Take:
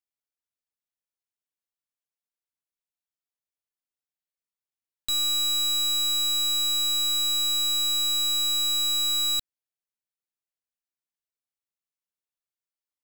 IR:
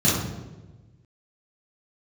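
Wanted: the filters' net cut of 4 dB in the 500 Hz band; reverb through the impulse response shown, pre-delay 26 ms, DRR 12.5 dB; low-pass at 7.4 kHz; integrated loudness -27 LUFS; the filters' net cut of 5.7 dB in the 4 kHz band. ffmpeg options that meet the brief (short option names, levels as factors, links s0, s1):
-filter_complex "[0:a]lowpass=7400,equalizer=f=500:t=o:g=-5.5,equalizer=f=4000:t=o:g=-5.5,asplit=2[s0][s1];[1:a]atrim=start_sample=2205,adelay=26[s2];[s1][s2]afir=irnorm=-1:irlink=0,volume=0.0355[s3];[s0][s3]amix=inputs=2:normalize=0,volume=1.12"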